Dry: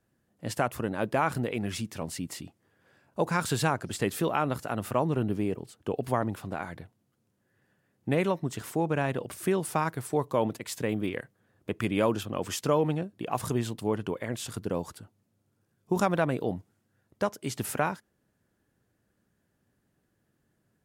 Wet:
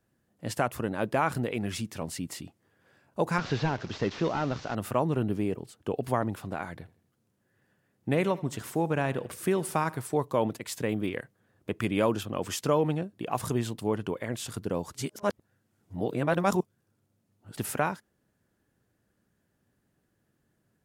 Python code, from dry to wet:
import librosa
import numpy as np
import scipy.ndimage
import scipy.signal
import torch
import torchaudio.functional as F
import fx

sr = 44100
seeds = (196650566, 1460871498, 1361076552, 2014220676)

y = fx.delta_mod(x, sr, bps=32000, step_db=-39.5, at=(3.38, 4.75))
y = fx.echo_feedback(y, sr, ms=81, feedback_pct=46, wet_db=-20.0, at=(6.78, 10.02))
y = fx.edit(y, sr, fx.reverse_span(start_s=14.95, length_s=2.62), tone=tone)